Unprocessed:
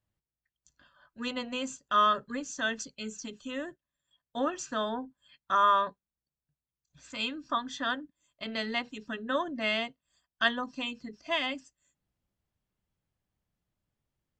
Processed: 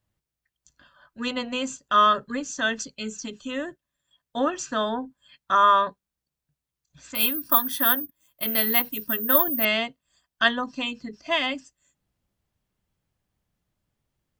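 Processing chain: 7.15–9.65 s: careless resampling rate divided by 3×, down filtered, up zero stuff; trim +6 dB

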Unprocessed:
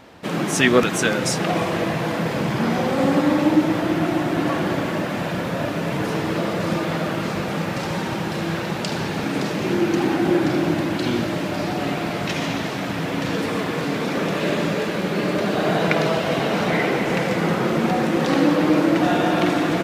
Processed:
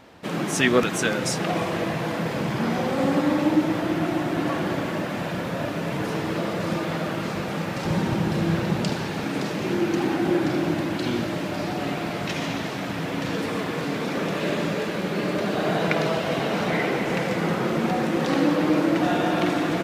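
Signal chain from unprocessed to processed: 7.85–8.93 s: bass shelf 340 Hz +9 dB; trim -3.5 dB

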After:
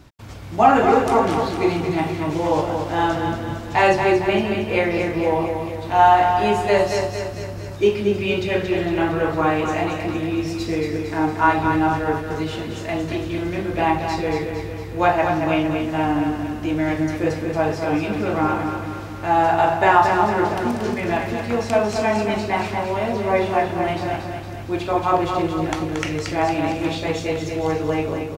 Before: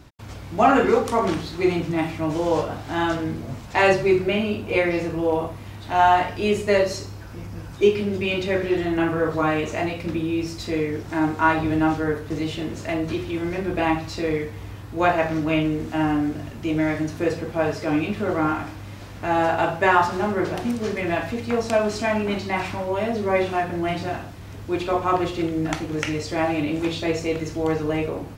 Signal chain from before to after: on a send: feedback delay 229 ms, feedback 56%, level -6 dB; on the sum: dynamic bell 830 Hz, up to +6 dB, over -35 dBFS, Q 3.5

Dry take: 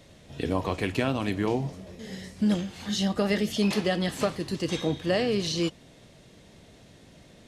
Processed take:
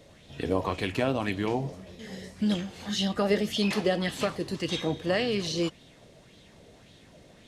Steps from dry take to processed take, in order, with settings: sweeping bell 1.8 Hz 430–3800 Hz +8 dB; trim -2.5 dB

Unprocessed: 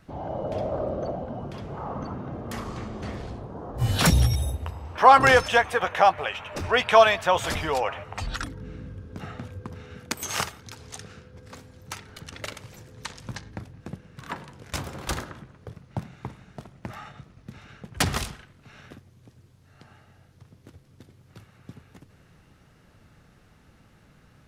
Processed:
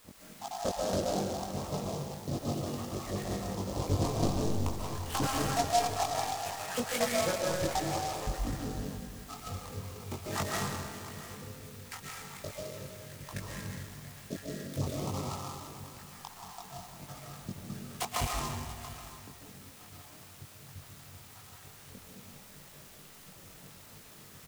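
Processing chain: random holes in the spectrogram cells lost 78%; low-pass 2.4 kHz 12 dB/octave; band-stop 1.5 kHz, Q 5.3; low-pass that closes with the level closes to 470 Hz, closed at -27.5 dBFS; high-pass 53 Hz 12 dB/octave; in parallel at -9 dB: word length cut 8-bit, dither triangular; on the sum: wavefolder -22.5 dBFS; doubling 21 ms -2 dB; on a send: delay 684 ms -15 dB; on the sum: algorithmic reverb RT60 1.6 s, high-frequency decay 1×, pre-delay 100 ms, DRR -3.5 dB; delay time shaken by noise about 5 kHz, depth 0.071 ms; trim -2.5 dB

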